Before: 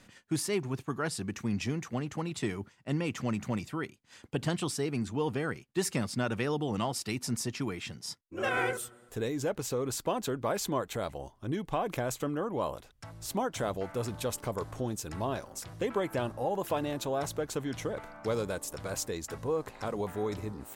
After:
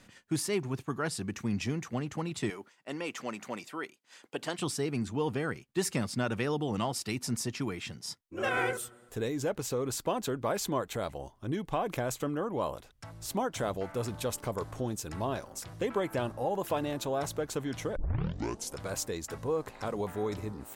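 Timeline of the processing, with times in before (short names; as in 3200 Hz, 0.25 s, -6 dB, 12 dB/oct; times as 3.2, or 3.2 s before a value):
2.5–4.59 HPF 380 Hz
17.96 tape start 0.82 s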